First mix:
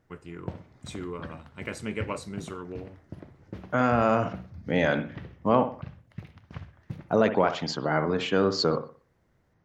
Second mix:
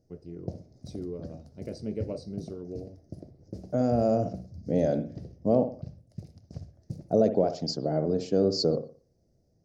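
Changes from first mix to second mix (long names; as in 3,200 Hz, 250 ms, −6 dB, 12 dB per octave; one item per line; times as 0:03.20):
first voice: add Savitzky-Golay smoothing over 15 samples
background: add parametric band 8,100 Hz +10.5 dB 1.1 octaves
master: add drawn EQ curve 670 Hz 0 dB, 1,000 Hz −23 dB, 2,000 Hz −22 dB, 3,300 Hz −20 dB, 4,900 Hz +3 dB, 7,200 Hz −3 dB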